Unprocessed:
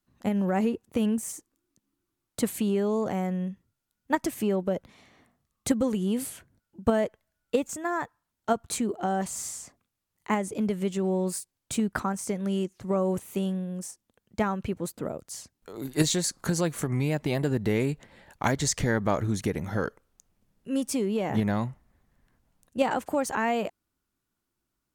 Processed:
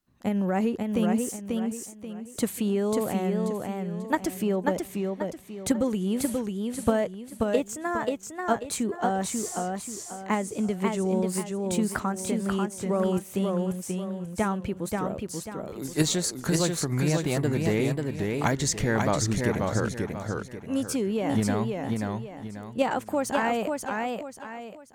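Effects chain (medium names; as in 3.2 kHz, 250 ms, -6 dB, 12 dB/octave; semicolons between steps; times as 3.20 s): modulated delay 537 ms, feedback 35%, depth 104 cents, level -3.5 dB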